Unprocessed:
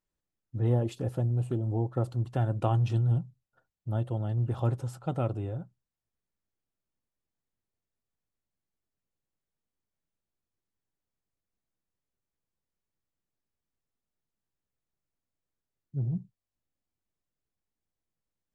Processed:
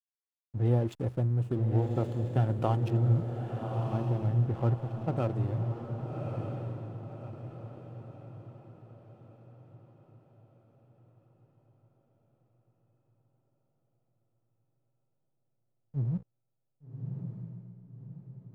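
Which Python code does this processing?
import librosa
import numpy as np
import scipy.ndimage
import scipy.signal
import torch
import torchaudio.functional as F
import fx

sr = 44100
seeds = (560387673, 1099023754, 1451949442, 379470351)

y = fx.lowpass(x, sr, hz=2300.0, slope=24, at=(2.9, 5.17))
y = fx.backlash(y, sr, play_db=-40.0)
y = fx.echo_diffused(y, sr, ms=1171, feedback_pct=44, wet_db=-4.5)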